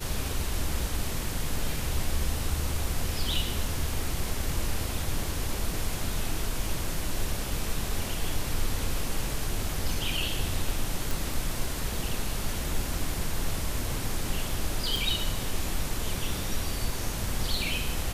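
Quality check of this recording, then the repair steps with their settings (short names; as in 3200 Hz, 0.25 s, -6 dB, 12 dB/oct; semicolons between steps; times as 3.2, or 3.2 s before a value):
11.11 pop
14.96 pop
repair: de-click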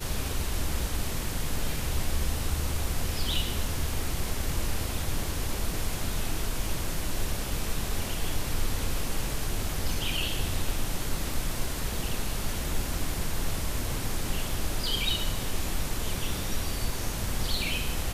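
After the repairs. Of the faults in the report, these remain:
none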